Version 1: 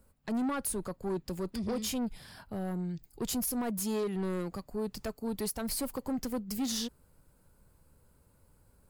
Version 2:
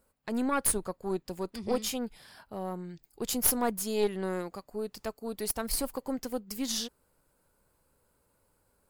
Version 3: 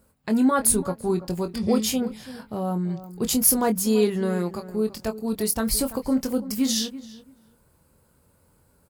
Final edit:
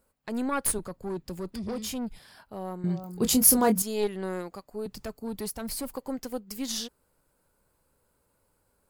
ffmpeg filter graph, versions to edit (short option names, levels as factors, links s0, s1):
-filter_complex "[0:a]asplit=2[s0][s1];[1:a]asplit=4[s2][s3][s4][s5];[s2]atrim=end=0.792[s6];[s0]atrim=start=0.788:end=2.192[s7];[s3]atrim=start=2.188:end=2.842[s8];[2:a]atrim=start=2.838:end=3.822[s9];[s4]atrim=start=3.818:end=4.862[s10];[s1]atrim=start=4.858:end=5.932[s11];[s5]atrim=start=5.928[s12];[s6][s7]acrossfade=d=0.004:c1=hsin:c2=hsin[s13];[s13][s8]acrossfade=d=0.004:c1=hsin:c2=hsin[s14];[s14][s9]acrossfade=d=0.004:c1=hsin:c2=hsin[s15];[s15][s10]acrossfade=d=0.004:c1=hsin:c2=hsin[s16];[s16][s11]acrossfade=d=0.004:c1=hsin:c2=hsin[s17];[s17][s12]acrossfade=d=0.004:c1=hsin:c2=hsin"